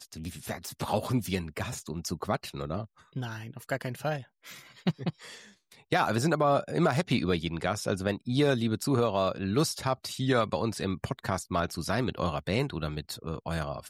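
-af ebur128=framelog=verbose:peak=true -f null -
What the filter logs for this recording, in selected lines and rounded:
Integrated loudness:
  I:         -30.4 LUFS
  Threshold: -40.7 LUFS
Loudness range:
  LRA:         7.9 LU
  Threshold: -50.3 LUFS
  LRA low:   -35.6 LUFS
  LRA high:  -27.7 LUFS
True peak:
  Peak:      -13.8 dBFS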